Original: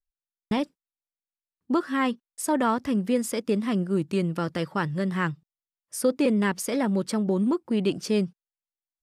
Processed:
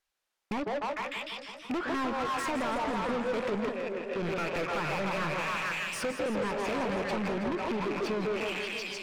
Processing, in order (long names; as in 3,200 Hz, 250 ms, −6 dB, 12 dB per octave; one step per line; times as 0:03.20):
loose part that buzzes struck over −38 dBFS, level −20 dBFS
echo through a band-pass that steps 150 ms, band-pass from 580 Hz, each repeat 0.7 octaves, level −1.5 dB
treble cut that deepens with the level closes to 1,400 Hz, closed at −20.5 dBFS
downward compressor 5 to 1, threshold −30 dBFS, peak gain reduction 12.5 dB
0:03.69–0:04.16: formant filter e
mid-hump overdrive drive 31 dB, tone 2,800 Hz, clips at −19 dBFS
pitch vibrato 1.3 Hz 5.3 cents
feedback echo with a swinging delay time 163 ms, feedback 74%, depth 178 cents, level −10 dB
level −6 dB